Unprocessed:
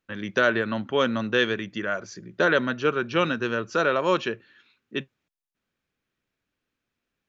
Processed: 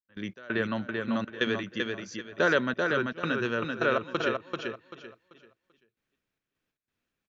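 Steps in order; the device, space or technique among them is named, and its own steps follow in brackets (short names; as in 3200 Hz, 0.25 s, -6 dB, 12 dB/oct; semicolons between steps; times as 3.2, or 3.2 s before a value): trance gate with a delay (step gate "..xx..xxxxx" 181 bpm -24 dB; feedback echo 0.388 s, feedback 27%, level -4 dB); gain -3 dB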